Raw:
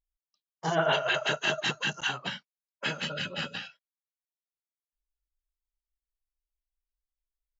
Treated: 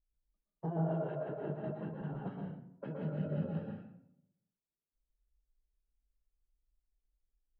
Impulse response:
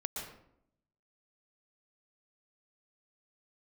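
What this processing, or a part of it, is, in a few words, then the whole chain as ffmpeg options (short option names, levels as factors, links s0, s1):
television next door: -filter_complex "[0:a]acompressor=threshold=0.0158:ratio=4,lowpass=400[s0];[1:a]atrim=start_sample=2205[s1];[s0][s1]afir=irnorm=-1:irlink=0,asettb=1/sr,asplit=3[s2][s3][s4];[s2]atrim=end=1.154[s5];[s3]atrim=start=1.15:end=2.27,asetpts=PTS-STARTPTS,afade=t=in:d=0.004:c=qsin,afade=t=out:st=1.116:d=0.004:c=qsin,aemphasis=mode=reproduction:type=75fm[s6];[s4]atrim=start=2.266[s7];[s5][s6]acrossfade=d=0.004:c1=hsin:c2=qsin[s8];[s8][s7]acrossfade=d=0.004:c1=qsin:c2=hsin,volume=2.24"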